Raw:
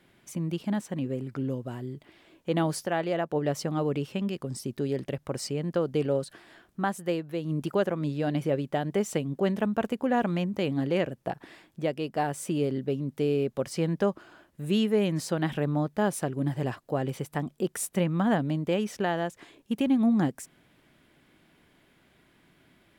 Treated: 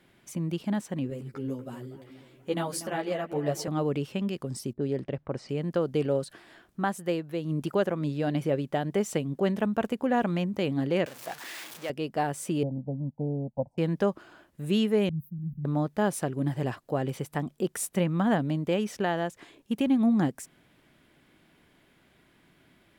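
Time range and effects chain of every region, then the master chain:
1.10–3.68 s: treble shelf 6 kHz +7.5 dB + bucket-brigade echo 240 ms, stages 4096, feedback 61%, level -13.5 dB + three-phase chorus
4.73–5.49 s: level-controlled noise filter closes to 460 Hz, open at -25.5 dBFS + treble shelf 2.5 kHz -8 dB
11.06–11.90 s: jump at every zero crossing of -34 dBFS + high-pass 1.3 kHz 6 dB/octave
12.63–13.78 s: elliptic low-pass 940 Hz + comb 1.3 ms, depth 98% + upward expansion, over -48 dBFS
15.09–15.65 s: inverse Chebyshev band-stop 450–8400 Hz, stop band 50 dB + three bands expanded up and down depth 100%
whole clip: none

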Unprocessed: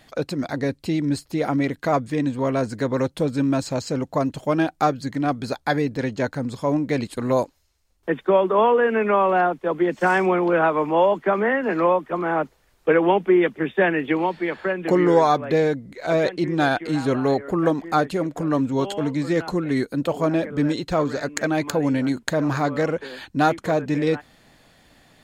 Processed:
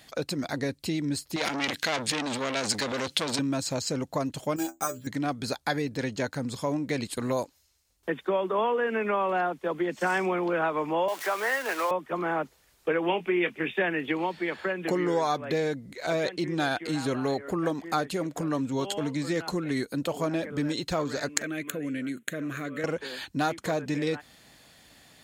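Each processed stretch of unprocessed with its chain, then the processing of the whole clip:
1.36–3.39 s: frequency weighting D + transient shaper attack +2 dB, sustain +11 dB + transformer saturation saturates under 2.7 kHz
4.56–5.07 s: low-pass 8.5 kHz + inharmonic resonator 60 Hz, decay 0.26 s, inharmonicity 0.008 + careless resampling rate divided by 6×, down filtered, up hold
11.08–11.91 s: jump at every zero crossing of -30 dBFS + high-pass 610 Hz
13.07–13.82 s: peaking EQ 2.5 kHz +10 dB 0.53 oct + doubling 23 ms -12.5 dB
21.42–22.84 s: compression 1.5:1, threshold -29 dBFS + high-pass 180 Hz + static phaser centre 2.1 kHz, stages 4
whole clip: compression 2:1, threshold -24 dBFS; high-pass 40 Hz; treble shelf 2.7 kHz +9.5 dB; trim -4 dB

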